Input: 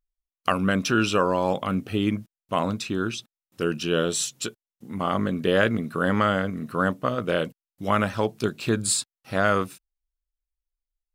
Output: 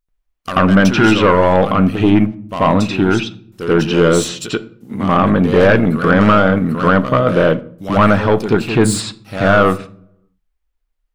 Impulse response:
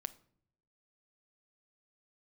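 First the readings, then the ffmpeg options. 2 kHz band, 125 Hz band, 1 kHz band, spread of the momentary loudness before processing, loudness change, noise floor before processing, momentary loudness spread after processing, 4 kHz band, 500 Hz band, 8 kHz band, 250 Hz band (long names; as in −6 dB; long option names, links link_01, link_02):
+10.0 dB, +13.5 dB, +11.0 dB, 8 LU, +11.5 dB, below −85 dBFS, 11 LU, +7.0 dB, +12.0 dB, +2.5 dB, +13.0 dB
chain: -filter_complex "[0:a]asoftclip=type=tanh:threshold=-20dB,asplit=2[link_01][link_02];[1:a]atrim=start_sample=2205,lowpass=2500,adelay=86[link_03];[link_02][link_03]afir=irnorm=-1:irlink=0,volume=13.5dB[link_04];[link_01][link_04]amix=inputs=2:normalize=0,volume=4dB"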